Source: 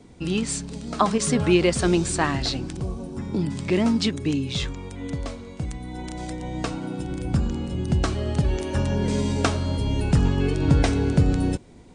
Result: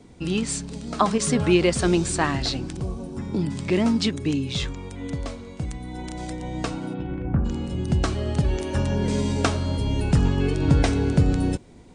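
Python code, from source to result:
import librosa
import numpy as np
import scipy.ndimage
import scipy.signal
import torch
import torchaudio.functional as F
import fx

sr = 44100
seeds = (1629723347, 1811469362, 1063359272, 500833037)

y = fx.lowpass(x, sr, hz=fx.line((6.93, 3700.0), (7.44, 1600.0)), slope=24, at=(6.93, 7.44), fade=0.02)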